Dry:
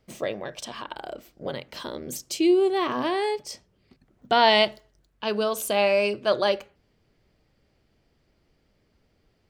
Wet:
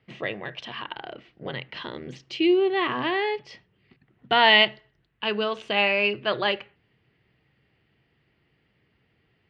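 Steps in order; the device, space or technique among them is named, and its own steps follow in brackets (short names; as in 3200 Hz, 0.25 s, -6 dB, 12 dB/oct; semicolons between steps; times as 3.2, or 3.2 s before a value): guitar cabinet (speaker cabinet 85–3800 Hz, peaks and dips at 130 Hz +6 dB, 250 Hz -3 dB, 580 Hz -7 dB, 1900 Hz +8 dB, 2800 Hz +7 dB)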